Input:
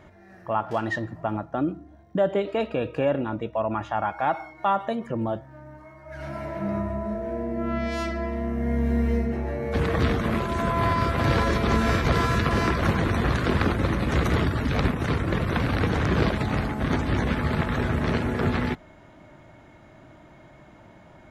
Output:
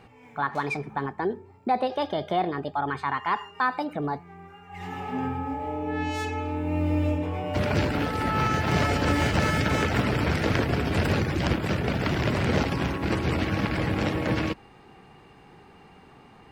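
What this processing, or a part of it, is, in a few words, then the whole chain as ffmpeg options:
nightcore: -af "asetrate=56889,aresample=44100,volume=-1.5dB"

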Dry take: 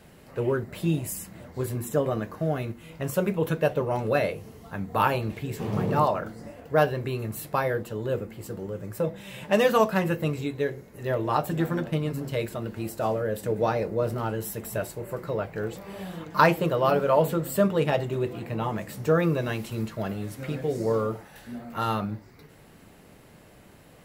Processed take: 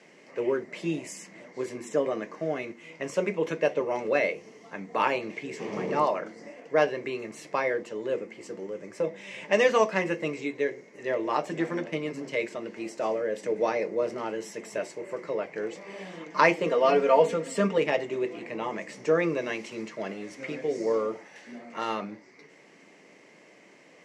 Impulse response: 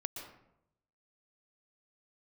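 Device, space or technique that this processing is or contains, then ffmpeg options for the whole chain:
television speaker: -filter_complex "[0:a]highpass=f=220:w=0.5412,highpass=f=220:w=1.3066,equalizer=f=230:t=q:w=4:g=-5,equalizer=f=780:t=q:w=4:g=-4,equalizer=f=1.4k:t=q:w=4:g=-7,equalizer=f=2.1k:t=q:w=4:g=9,equalizer=f=3.8k:t=q:w=4:g=-6,equalizer=f=5.9k:t=q:w=4:g=5,lowpass=f=7.1k:w=0.5412,lowpass=f=7.1k:w=1.3066,asettb=1/sr,asplit=3[a][b][c];[a]atrim=end=16.664[d];[b]atrim=start=16.66:end=17.78,asetpts=PTS-STARTPTS,afade=t=in:d=0.004:c=qsin,afade=t=out:st=1.116:d=0.004:c=qsin,aecho=1:1:4.3:0.86,atrim=end_sample=49392[e];[c]atrim=start=17.776[f];[d][e]acrossfade=d=0.004:c1=hsin:c2=qsin[g];[g][f]acrossfade=d=0.004:c1=qsin:c2=hsin"

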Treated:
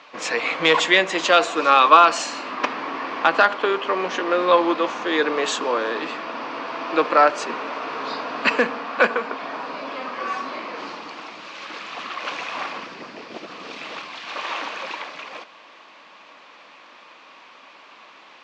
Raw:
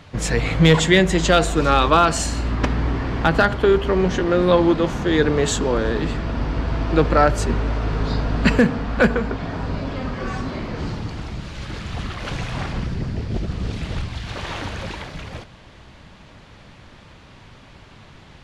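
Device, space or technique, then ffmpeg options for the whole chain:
phone speaker on a table: -af "highpass=f=330:w=0.5412,highpass=f=330:w=1.3066,equalizer=f=390:t=q:w=4:g=-7,equalizer=f=1.1k:t=q:w=4:g=8,equalizer=f=2.5k:t=q:w=4:g=6,lowpass=f=6.4k:w=0.5412,lowpass=f=6.4k:w=1.3066"

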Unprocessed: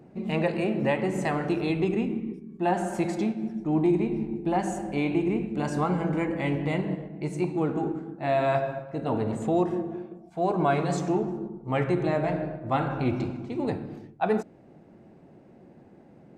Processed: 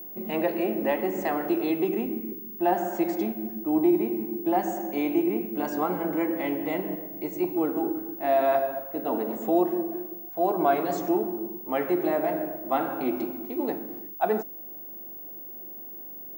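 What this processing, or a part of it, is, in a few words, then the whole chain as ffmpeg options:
old television with a line whistle: -filter_complex "[0:a]highpass=f=210:w=0.5412,highpass=f=210:w=1.3066,equalizer=f=330:t=q:w=4:g=4,equalizer=f=700:t=q:w=4:g=4,equalizer=f=2.5k:t=q:w=4:g=-4,equalizer=f=4.1k:t=q:w=4:g=-4,lowpass=f=7.5k:w=0.5412,lowpass=f=7.5k:w=1.3066,aeval=exprs='val(0)+0.0141*sin(2*PI*15625*n/s)':c=same,highpass=160,asettb=1/sr,asplit=3[a][b][c];[a]atrim=end=4.804[d];[b]atrim=start=4.8:end=5.21,asetpts=PTS-STARTPTS,afade=t=in:d=0.004:c=qsin,afade=t=out:st=0.406:d=0.004:c=qsin,equalizer=f=6.4k:w=5.4:g=11[e];[c]atrim=start=5.206[f];[d][e]acrossfade=d=0.004:c1=hsin:c2=qsin[g];[g][f]acrossfade=d=0.004:c1=qsin:c2=hsin,volume=-1dB"

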